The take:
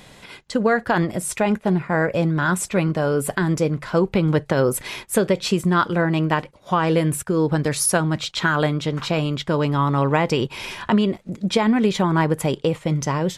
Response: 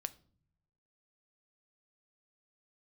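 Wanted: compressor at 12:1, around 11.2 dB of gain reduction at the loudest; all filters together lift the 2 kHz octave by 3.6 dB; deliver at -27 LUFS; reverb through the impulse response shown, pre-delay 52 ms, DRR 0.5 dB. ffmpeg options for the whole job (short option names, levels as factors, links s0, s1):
-filter_complex "[0:a]equalizer=f=2000:t=o:g=5,acompressor=threshold=0.0631:ratio=12,asplit=2[s0][s1];[1:a]atrim=start_sample=2205,adelay=52[s2];[s1][s2]afir=irnorm=-1:irlink=0,volume=1.19[s3];[s0][s3]amix=inputs=2:normalize=0,volume=0.841"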